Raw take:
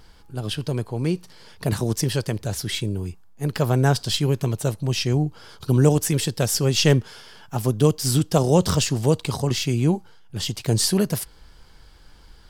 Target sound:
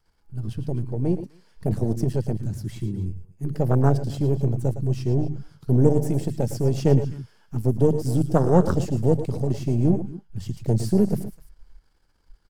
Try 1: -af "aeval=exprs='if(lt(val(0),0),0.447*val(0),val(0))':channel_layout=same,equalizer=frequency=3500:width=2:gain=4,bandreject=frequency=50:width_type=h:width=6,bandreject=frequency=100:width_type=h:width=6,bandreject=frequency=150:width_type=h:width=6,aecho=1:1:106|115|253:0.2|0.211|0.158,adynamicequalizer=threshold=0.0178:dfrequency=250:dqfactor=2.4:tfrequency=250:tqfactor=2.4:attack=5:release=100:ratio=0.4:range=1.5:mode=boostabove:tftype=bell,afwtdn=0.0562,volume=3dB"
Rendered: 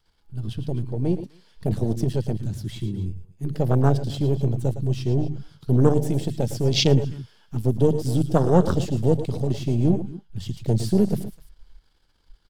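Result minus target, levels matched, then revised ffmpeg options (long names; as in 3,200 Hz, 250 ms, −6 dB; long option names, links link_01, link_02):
4,000 Hz band +13.5 dB
-af "aeval=exprs='if(lt(val(0),0),0.447*val(0),val(0))':channel_layout=same,equalizer=frequency=3500:width=2:gain=-6,bandreject=frequency=50:width_type=h:width=6,bandreject=frequency=100:width_type=h:width=6,bandreject=frequency=150:width_type=h:width=6,aecho=1:1:106|115|253:0.2|0.211|0.158,adynamicequalizer=threshold=0.0178:dfrequency=250:dqfactor=2.4:tfrequency=250:tqfactor=2.4:attack=5:release=100:ratio=0.4:range=1.5:mode=boostabove:tftype=bell,afwtdn=0.0562,volume=3dB"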